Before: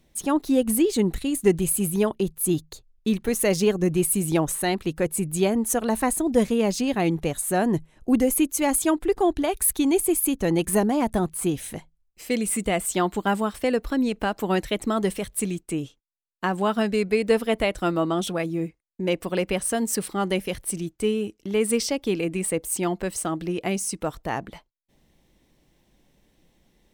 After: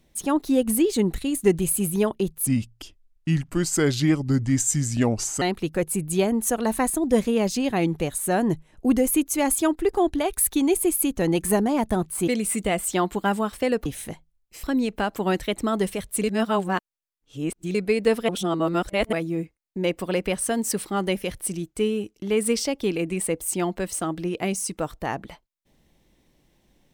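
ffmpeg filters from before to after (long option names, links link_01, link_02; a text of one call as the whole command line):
ffmpeg -i in.wav -filter_complex "[0:a]asplit=10[link_01][link_02][link_03][link_04][link_05][link_06][link_07][link_08][link_09][link_10];[link_01]atrim=end=2.474[link_11];[link_02]atrim=start=2.47:end=4.65,asetpts=PTS-STARTPTS,asetrate=32634,aresample=44100,atrim=end_sample=129916,asetpts=PTS-STARTPTS[link_12];[link_03]atrim=start=4.646:end=11.512[link_13];[link_04]atrim=start=12.288:end=13.872[link_14];[link_05]atrim=start=11.508:end=12.292[link_15];[link_06]atrim=start=13.868:end=15.472[link_16];[link_07]atrim=start=15.468:end=16.982,asetpts=PTS-STARTPTS,areverse[link_17];[link_08]atrim=start=16.978:end=17.522[link_18];[link_09]atrim=start=17.518:end=18.362,asetpts=PTS-STARTPTS,areverse[link_19];[link_10]atrim=start=18.358[link_20];[link_11][link_12]acrossfade=duration=0.004:curve1=hsin:curve2=hsin[link_21];[link_21][link_13]acrossfade=duration=0.004:curve1=hsin:curve2=hsin[link_22];[link_22][link_14]acrossfade=duration=0.004:curve1=hsin:curve2=hsin[link_23];[link_23][link_15]acrossfade=duration=0.004:curve1=hsin:curve2=hsin[link_24];[link_24][link_16]acrossfade=duration=0.004:curve1=hsin:curve2=hsin[link_25];[link_25][link_17]acrossfade=duration=0.004:curve1=hsin:curve2=hsin[link_26];[link_26][link_18]acrossfade=duration=0.004:curve1=hsin:curve2=hsin[link_27];[link_27][link_19]acrossfade=duration=0.004:curve1=hsin:curve2=hsin[link_28];[link_28][link_20]acrossfade=duration=0.004:curve1=hsin:curve2=hsin" out.wav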